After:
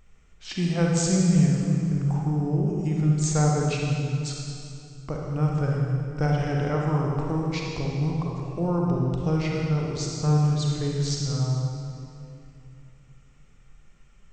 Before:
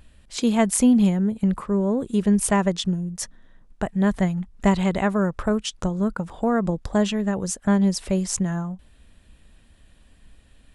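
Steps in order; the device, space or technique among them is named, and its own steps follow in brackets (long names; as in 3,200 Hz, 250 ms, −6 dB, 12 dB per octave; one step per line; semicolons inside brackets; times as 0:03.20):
slowed and reverbed (speed change −25%; convolution reverb RT60 2.6 s, pre-delay 36 ms, DRR −2 dB)
level −7 dB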